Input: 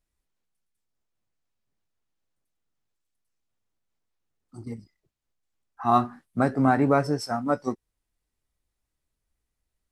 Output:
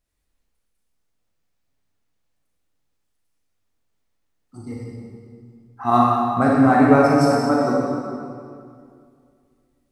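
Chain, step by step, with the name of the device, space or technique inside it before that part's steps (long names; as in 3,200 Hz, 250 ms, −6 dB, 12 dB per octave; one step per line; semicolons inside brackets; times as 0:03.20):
stairwell (convolution reverb RT60 2.3 s, pre-delay 30 ms, DRR −4.5 dB)
level +2 dB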